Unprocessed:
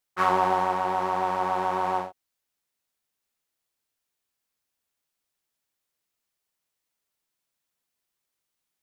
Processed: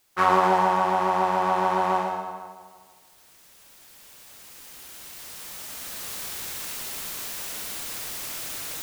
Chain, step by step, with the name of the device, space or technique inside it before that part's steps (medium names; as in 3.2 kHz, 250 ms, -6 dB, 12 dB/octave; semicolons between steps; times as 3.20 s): cheap recorder with automatic gain (white noise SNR 37 dB; recorder AGC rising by 7.2 dB/s); two-band feedback delay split 1.3 kHz, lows 156 ms, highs 117 ms, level -4.5 dB; trim +2.5 dB